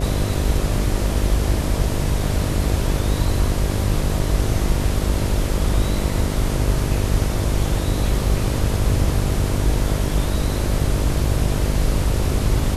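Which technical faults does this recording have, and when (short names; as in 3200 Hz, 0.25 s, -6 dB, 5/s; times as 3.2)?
buzz 50 Hz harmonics 13 -23 dBFS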